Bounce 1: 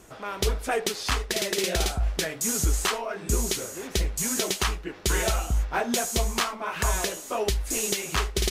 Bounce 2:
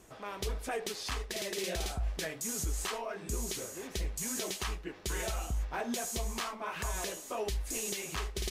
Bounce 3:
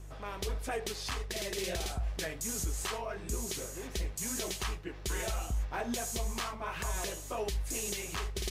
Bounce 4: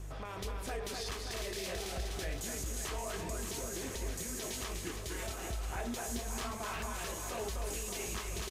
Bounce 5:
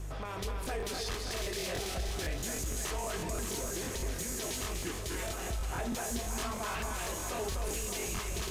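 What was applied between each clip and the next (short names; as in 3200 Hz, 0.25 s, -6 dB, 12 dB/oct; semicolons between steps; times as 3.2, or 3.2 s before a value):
notch 1400 Hz, Q 16; limiter -20 dBFS, peak gain reduction 5.5 dB; gain -6.5 dB
buzz 50 Hz, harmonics 3, -47 dBFS -8 dB/oct
limiter -35.5 dBFS, peak gain reduction 10 dB; on a send: reverse bouncing-ball echo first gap 0.25 s, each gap 1.3×, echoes 5; on the sum: gain +3 dB
in parallel at -4 dB: soft clip -37.5 dBFS, distortion -13 dB; on the sum: crackling interface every 0.16 s, samples 1024, repeat, from 0.62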